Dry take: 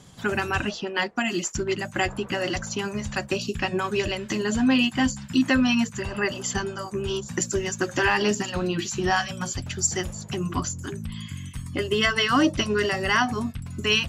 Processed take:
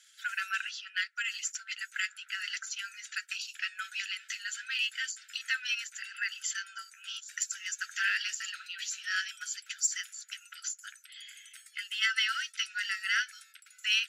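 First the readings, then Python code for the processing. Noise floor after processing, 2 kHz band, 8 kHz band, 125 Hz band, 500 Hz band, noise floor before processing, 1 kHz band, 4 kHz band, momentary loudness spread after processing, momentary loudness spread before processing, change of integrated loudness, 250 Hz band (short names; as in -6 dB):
-61 dBFS, -5.0 dB, -5.0 dB, under -40 dB, under -40 dB, -41 dBFS, -16.5 dB, -5.0 dB, 13 LU, 10 LU, -8.5 dB, under -40 dB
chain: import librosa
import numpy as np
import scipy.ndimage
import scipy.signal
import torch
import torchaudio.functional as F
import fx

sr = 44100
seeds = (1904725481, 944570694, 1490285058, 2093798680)

p1 = np.clip(x, -10.0 ** (-18.5 / 20.0), 10.0 ** (-18.5 / 20.0))
p2 = x + F.gain(torch.from_numpy(p1), -10.0).numpy()
p3 = fx.brickwall_highpass(p2, sr, low_hz=1300.0)
y = F.gain(torch.from_numpy(p3), -7.0).numpy()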